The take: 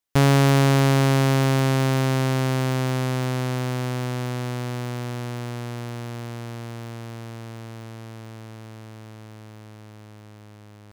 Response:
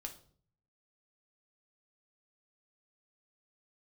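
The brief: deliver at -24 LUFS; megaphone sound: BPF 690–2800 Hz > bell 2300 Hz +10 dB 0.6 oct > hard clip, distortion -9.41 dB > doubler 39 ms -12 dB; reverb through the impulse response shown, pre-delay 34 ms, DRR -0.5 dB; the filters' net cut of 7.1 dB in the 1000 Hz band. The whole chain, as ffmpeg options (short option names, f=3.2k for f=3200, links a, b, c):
-filter_complex "[0:a]equalizer=f=1k:t=o:g=-8.5,asplit=2[a][b];[1:a]atrim=start_sample=2205,adelay=34[c];[b][c]afir=irnorm=-1:irlink=0,volume=4dB[d];[a][d]amix=inputs=2:normalize=0,highpass=690,lowpass=2.8k,equalizer=f=2.3k:t=o:w=0.6:g=10,asoftclip=type=hard:threshold=-20dB,asplit=2[e][f];[f]adelay=39,volume=-12dB[g];[e][g]amix=inputs=2:normalize=0,volume=5dB"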